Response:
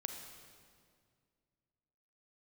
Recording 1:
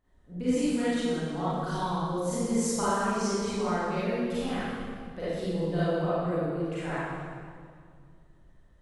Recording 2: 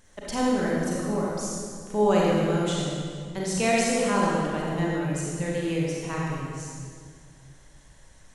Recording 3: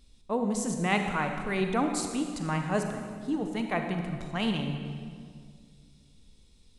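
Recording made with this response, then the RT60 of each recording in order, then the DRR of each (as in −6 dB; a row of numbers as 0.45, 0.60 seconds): 3; 2.1, 2.1, 2.1 seconds; −13.0, −5.0, 4.5 decibels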